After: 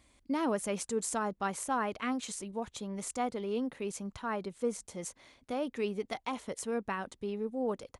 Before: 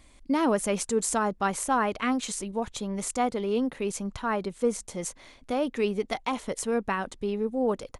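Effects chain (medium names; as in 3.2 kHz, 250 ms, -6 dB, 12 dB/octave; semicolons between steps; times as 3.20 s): high-pass 50 Hz 12 dB/octave; trim -7 dB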